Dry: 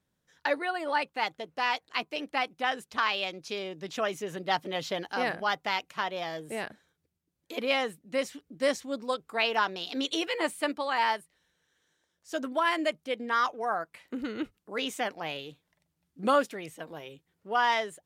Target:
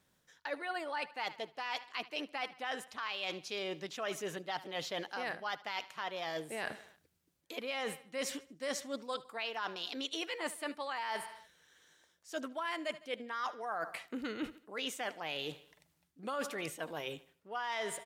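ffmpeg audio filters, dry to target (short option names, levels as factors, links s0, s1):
-af "lowshelf=f=430:g=-7,aecho=1:1:77|154|231|308:0.0794|0.0405|0.0207|0.0105,alimiter=limit=0.0944:level=0:latency=1:release=233,areverse,acompressor=threshold=0.00562:ratio=6,areverse,volume=2.66"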